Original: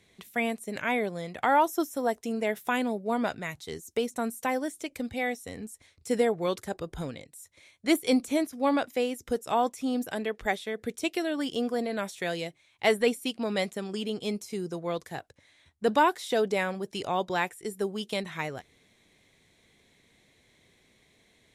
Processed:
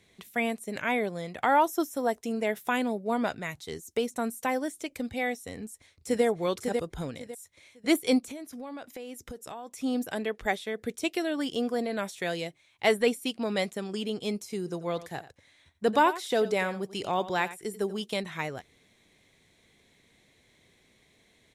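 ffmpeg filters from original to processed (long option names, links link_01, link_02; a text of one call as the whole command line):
ffmpeg -i in.wav -filter_complex "[0:a]asplit=2[link_01][link_02];[link_02]afade=type=in:start_time=5.53:duration=0.01,afade=type=out:start_time=6.24:duration=0.01,aecho=0:1:550|1100|1650:0.595662|0.148916|0.0372289[link_03];[link_01][link_03]amix=inputs=2:normalize=0,asplit=3[link_04][link_05][link_06];[link_04]afade=type=out:start_time=8.18:duration=0.02[link_07];[link_05]acompressor=threshold=-37dB:ratio=8:attack=3.2:release=140:knee=1:detection=peak,afade=type=in:start_time=8.18:duration=0.02,afade=type=out:start_time=9.75:duration=0.02[link_08];[link_06]afade=type=in:start_time=9.75:duration=0.02[link_09];[link_07][link_08][link_09]amix=inputs=3:normalize=0,asplit=3[link_10][link_11][link_12];[link_10]afade=type=out:start_time=14.66:duration=0.02[link_13];[link_11]aecho=1:1:89:0.178,afade=type=in:start_time=14.66:duration=0.02,afade=type=out:start_time=18.03:duration=0.02[link_14];[link_12]afade=type=in:start_time=18.03:duration=0.02[link_15];[link_13][link_14][link_15]amix=inputs=3:normalize=0" out.wav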